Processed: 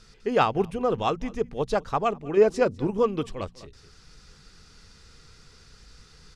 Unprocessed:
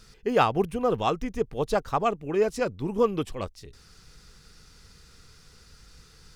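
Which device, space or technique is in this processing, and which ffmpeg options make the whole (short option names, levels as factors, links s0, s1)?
ducked delay: -filter_complex "[0:a]asplit=3[s0][s1][s2];[s1]adelay=201,volume=0.631[s3];[s2]apad=whole_len=289309[s4];[s3][s4]sidechaincompress=threshold=0.01:ratio=10:attack=8:release=692[s5];[s0][s5]amix=inputs=2:normalize=0,asettb=1/sr,asplit=3[s6][s7][s8];[s6]atrim=end=2.374[s9];[s7]atrim=start=2.37:end=2.9,asetpts=PTS-STARTPTS,afade=t=in:d=0.004:c=qsin,afade=t=out:st=0.526:d=0.004:c=qsin,equalizer=f=460:w=0.34:g=5.5[s10];[s8]atrim=start=2.896[s11];[s9][s10]acrossfade=d=0.004:c1=hsin:c2=qsin[s12];[s12][s11]acrossfade=d=0.004:c1=qsin:c2=hsin,lowpass=7800,bandreject=f=59.18:t=h:w=4,bandreject=f=118.36:t=h:w=4,bandreject=f=177.54:t=h:w=4,bandreject=f=236.72:t=h:w=4"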